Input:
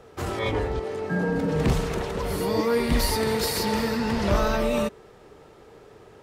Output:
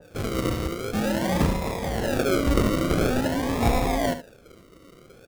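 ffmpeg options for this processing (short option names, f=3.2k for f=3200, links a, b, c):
-filter_complex "[0:a]aexciter=amount=3.4:drive=5.3:freq=3.2k,asetrate=52038,aresample=44100,adynamicsmooth=sensitivity=7:basefreq=1.5k,acrusher=samples=41:mix=1:aa=0.000001:lfo=1:lforange=24.6:lforate=0.47,asplit=2[a][b];[b]aecho=0:1:72:0.266[c];[a][c]amix=inputs=2:normalize=0,adynamicequalizer=threshold=0.02:dfrequency=1800:dqfactor=0.7:tfrequency=1800:tqfactor=0.7:attack=5:release=100:ratio=0.375:range=1.5:mode=cutabove:tftype=highshelf"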